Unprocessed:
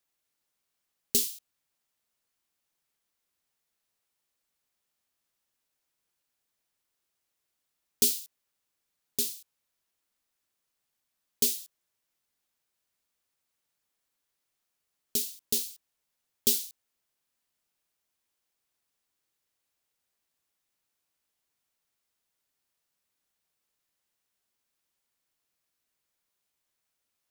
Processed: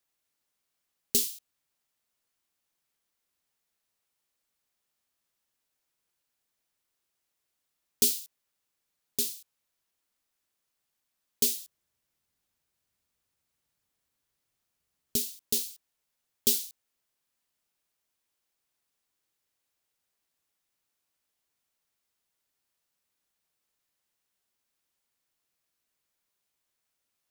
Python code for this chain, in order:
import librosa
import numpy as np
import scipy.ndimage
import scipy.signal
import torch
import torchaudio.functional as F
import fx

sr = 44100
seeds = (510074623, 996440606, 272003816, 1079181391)

y = fx.peak_eq(x, sr, hz=75.0, db=10.5, octaves=2.9, at=(11.5, 15.32))